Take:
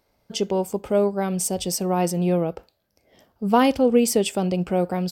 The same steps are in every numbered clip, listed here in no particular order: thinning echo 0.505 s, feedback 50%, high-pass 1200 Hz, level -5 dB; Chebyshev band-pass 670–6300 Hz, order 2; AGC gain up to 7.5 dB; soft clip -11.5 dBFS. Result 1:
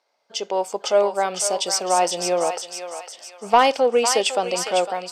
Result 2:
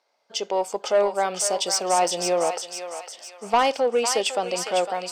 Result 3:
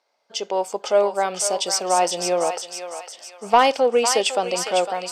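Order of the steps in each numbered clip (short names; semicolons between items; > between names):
Chebyshev band-pass > soft clip > thinning echo > AGC; AGC > Chebyshev band-pass > soft clip > thinning echo; Chebyshev band-pass > soft clip > AGC > thinning echo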